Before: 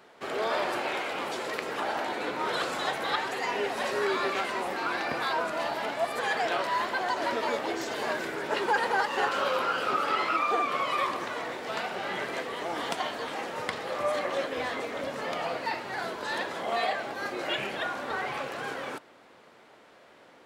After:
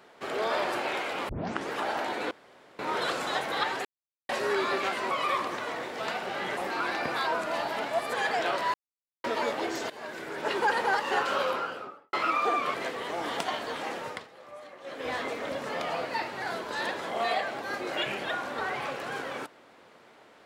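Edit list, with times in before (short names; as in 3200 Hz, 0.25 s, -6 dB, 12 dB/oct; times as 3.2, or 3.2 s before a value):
1.29 tape start 0.42 s
2.31 insert room tone 0.48 s
3.37–3.81 mute
6.8–7.3 mute
7.96–8.62 fade in, from -16.5 dB
9.42–10.19 studio fade out
10.8–12.26 move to 4.63
13.5–14.65 dip -17 dB, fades 0.30 s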